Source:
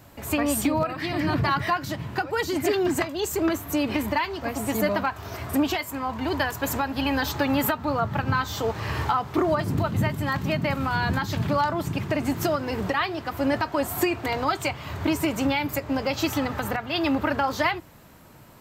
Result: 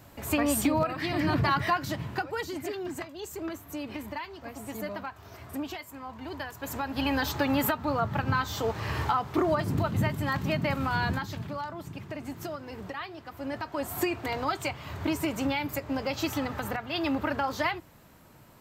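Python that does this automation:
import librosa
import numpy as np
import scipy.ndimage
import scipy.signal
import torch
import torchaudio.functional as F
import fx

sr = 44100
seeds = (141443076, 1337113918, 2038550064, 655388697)

y = fx.gain(x, sr, db=fx.line((2.02, -2.0), (2.73, -12.0), (6.55, -12.0), (6.99, -3.0), (11.04, -3.0), (11.49, -12.5), (13.4, -12.5), (13.97, -5.0)))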